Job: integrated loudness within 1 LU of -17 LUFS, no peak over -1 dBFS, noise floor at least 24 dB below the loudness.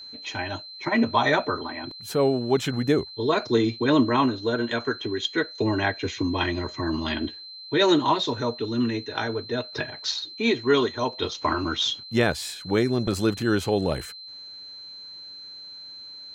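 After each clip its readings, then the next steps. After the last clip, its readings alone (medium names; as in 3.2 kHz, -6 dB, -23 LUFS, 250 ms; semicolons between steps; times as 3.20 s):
steady tone 4.1 kHz; tone level -39 dBFS; loudness -25.0 LUFS; peak level -7.5 dBFS; loudness target -17.0 LUFS
-> band-stop 4.1 kHz, Q 30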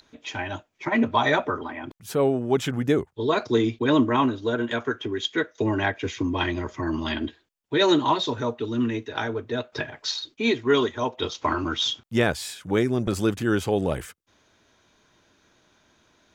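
steady tone not found; loudness -25.0 LUFS; peak level -7.5 dBFS; loudness target -17.0 LUFS
-> trim +8 dB; peak limiter -1 dBFS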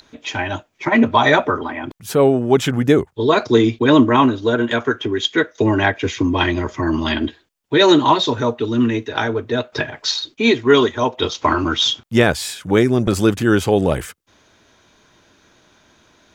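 loudness -17.0 LUFS; peak level -1.0 dBFS; noise floor -58 dBFS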